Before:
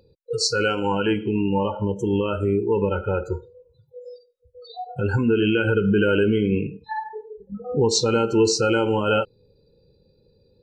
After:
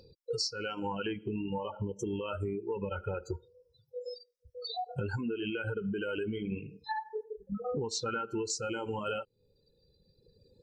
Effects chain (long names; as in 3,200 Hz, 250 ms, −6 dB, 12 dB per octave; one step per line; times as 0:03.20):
reverb reduction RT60 1.5 s
parametric band 5,200 Hz +13.5 dB 0.52 octaves, from 0:07.23 1,500 Hz, from 0:08.50 7,300 Hz
downward compressor 10 to 1, threshold −32 dBFS, peak gain reduction 23 dB